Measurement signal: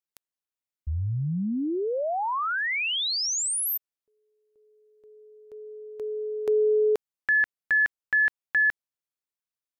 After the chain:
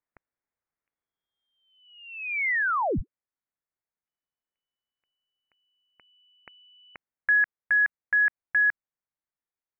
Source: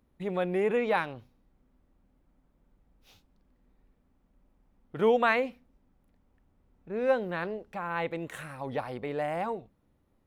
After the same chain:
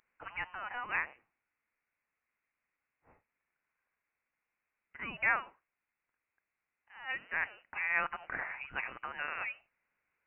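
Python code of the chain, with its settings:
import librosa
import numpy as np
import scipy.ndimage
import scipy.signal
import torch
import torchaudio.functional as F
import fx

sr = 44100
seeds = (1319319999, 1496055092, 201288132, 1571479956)

y = fx.rider(x, sr, range_db=4, speed_s=0.5)
y = scipy.signal.sosfilt(scipy.signal.butter(4, 1200.0, 'highpass', fs=sr, output='sos'), y)
y = fx.freq_invert(y, sr, carrier_hz=3400)
y = y * librosa.db_to_amplitude(2.5)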